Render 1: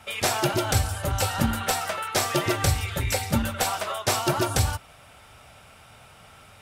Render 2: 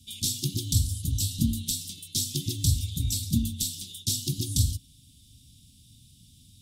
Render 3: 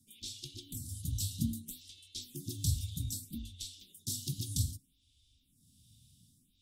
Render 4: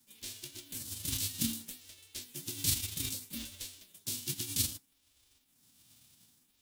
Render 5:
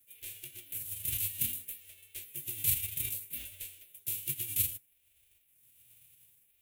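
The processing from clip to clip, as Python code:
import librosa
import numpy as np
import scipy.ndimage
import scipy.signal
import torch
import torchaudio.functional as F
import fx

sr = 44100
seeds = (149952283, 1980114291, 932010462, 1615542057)

y1 = scipy.signal.sosfilt(scipy.signal.cheby1(4, 1.0, [280.0, 3500.0], 'bandstop', fs=sr, output='sos'), x)
y2 = fx.stagger_phaser(y1, sr, hz=0.63)
y2 = y2 * 10.0 ** (-7.5 / 20.0)
y3 = fx.envelope_flatten(y2, sr, power=0.3)
y4 = fx.curve_eq(y3, sr, hz=(140.0, 210.0, 390.0, 630.0, 1100.0, 2500.0, 5000.0, 12000.0), db=(0, -18, -1, -1, -10, 6, -13, 9))
y4 = y4 * 10.0 ** (-2.5 / 20.0)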